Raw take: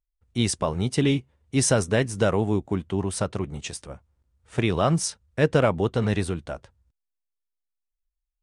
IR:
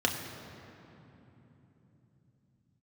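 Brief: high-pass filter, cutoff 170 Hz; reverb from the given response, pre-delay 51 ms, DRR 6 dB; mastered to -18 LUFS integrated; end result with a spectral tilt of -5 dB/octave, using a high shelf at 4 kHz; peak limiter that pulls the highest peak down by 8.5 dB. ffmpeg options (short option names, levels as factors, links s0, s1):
-filter_complex "[0:a]highpass=170,highshelf=f=4000:g=-3.5,alimiter=limit=0.178:level=0:latency=1,asplit=2[s0][s1];[1:a]atrim=start_sample=2205,adelay=51[s2];[s1][s2]afir=irnorm=-1:irlink=0,volume=0.158[s3];[s0][s3]amix=inputs=2:normalize=0,volume=2.99"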